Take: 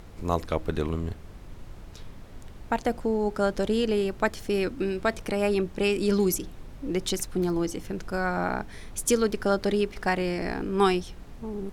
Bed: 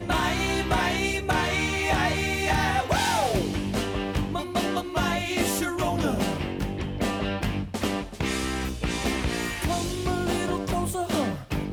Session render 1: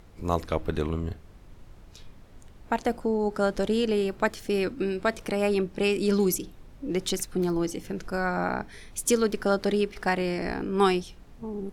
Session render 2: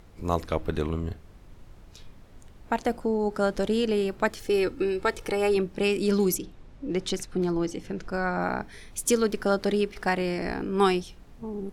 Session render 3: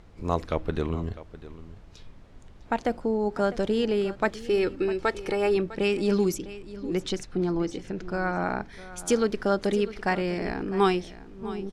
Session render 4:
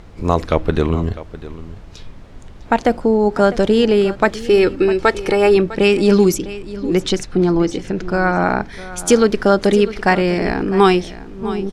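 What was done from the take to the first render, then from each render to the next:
noise print and reduce 6 dB
4.4–5.57 comb 2.3 ms, depth 53%; 6.37–8.41 air absorption 51 m
air absorption 56 m; echo 0.653 s -16 dB
gain +11.5 dB; limiter -1 dBFS, peak gain reduction 2.5 dB

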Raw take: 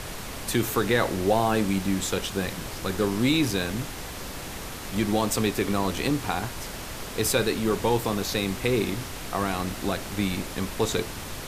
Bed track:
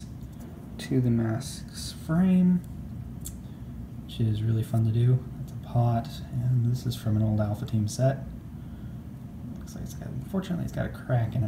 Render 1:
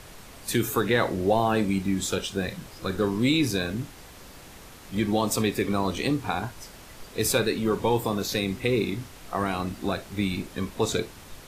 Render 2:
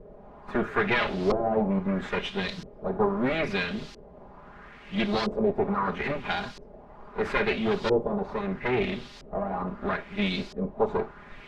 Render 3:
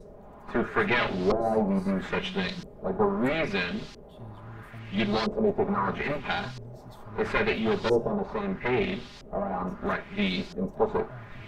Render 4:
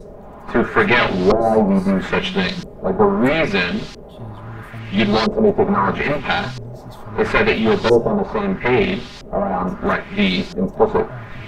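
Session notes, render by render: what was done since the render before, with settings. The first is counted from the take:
noise print and reduce 10 dB
minimum comb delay 4.9 ms; LFO low-pass saw up 0.76 Hz 450–5100 Hz
add bed track -19 dB
gain +10.5 dB

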